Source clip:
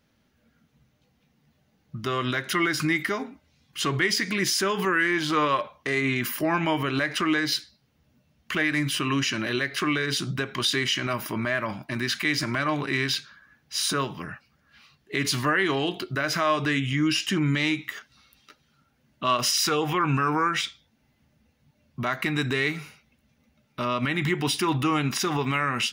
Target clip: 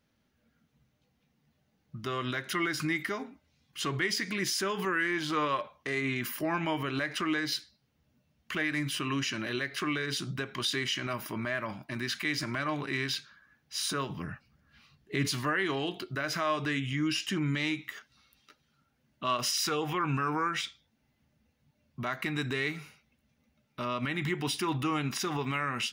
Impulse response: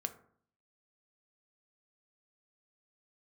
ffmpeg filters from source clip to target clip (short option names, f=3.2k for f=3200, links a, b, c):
-filter_complex "[0:a]asettb=1/sr,asplit=3[a][b][c];[a]atrim=end=14.094[d];[b]atrim=start=14.09:end=15.28,asetpts=PTS-STARTPTS,afade=t=in:d=0.004:c=qsin,afade=t=out:st=1.186:d=0.004:c=qsin,lowshelf=f=250:g=10[e];[c]atrim=start=15.276[f];[d][e]acrossfade=d=0.004:c1=hsin:c2=qsin[g];[g][f]acrossfade=d=0.004:c1=qsin:c2=hsin,volume=-6.5dB"